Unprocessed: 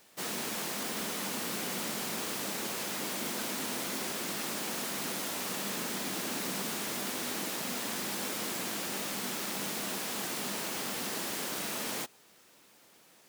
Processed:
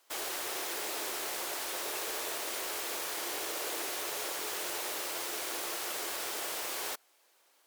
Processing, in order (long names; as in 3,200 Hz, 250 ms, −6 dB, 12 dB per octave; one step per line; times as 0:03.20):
high-pass filter 220 Hz 12 dB per octave
in parallel at 0 dB: bit reduction 6 bits
on the sum: wrong playback speed 45 rpm record played at 78 rpm
level −6 dB